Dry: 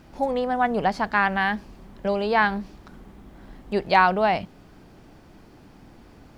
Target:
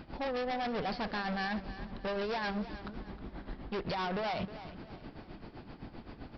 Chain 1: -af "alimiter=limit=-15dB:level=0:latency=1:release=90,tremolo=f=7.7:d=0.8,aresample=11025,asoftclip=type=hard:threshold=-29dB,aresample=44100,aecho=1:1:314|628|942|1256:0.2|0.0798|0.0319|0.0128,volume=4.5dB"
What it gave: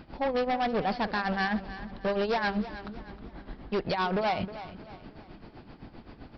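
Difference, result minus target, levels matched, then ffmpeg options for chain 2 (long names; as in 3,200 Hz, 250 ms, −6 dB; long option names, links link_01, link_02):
hard clipping: distortion −4 dB
-af "alimiter=limit=-15dB:level=0:latency=1:release=90,tremolo=f=7.7:d=0.8,aresample=11025,asoftclip=type=hard:threshold=-37.5dB,aresample=44100,aecho=1:1:314|628|942|1256:0.2|0.0798|0.0319|0.0128,volume=4.5dB"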